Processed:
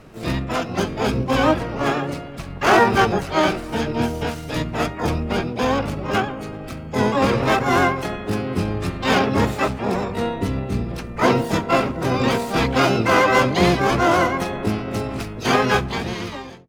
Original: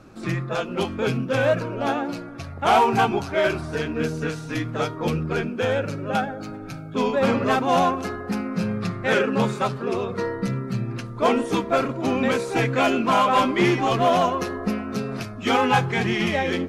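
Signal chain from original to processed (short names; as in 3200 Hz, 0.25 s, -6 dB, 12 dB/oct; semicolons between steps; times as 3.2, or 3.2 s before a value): ending faded out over 1.23 s; harmoniser -12 st -1 dB, +7 st -5 dB, +12 st -4 dB; gain -1 dB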